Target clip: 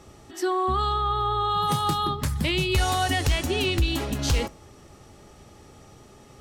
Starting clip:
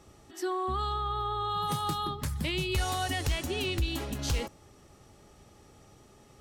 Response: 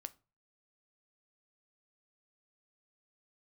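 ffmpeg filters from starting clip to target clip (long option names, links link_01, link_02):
-filter_complex "[0:a]asplit=2[link_01][link_02];[1:a]atrim=start_sample=2205,highshelf=frequency=11000:gain=-7.5[link_03];[link_02][link_03]afir=irnorm=-1:irlink=0,volume=6.5dB[link_04];[link_01][link_04]amix=inputs=2:normalize=0"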